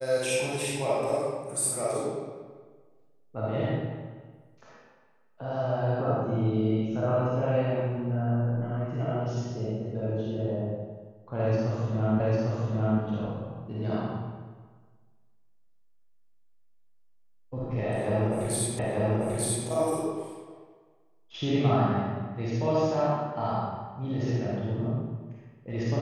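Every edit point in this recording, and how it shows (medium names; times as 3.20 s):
12.20 s: repeat of the last 0.8 s
18.79 s: repeat of the last 0.89 s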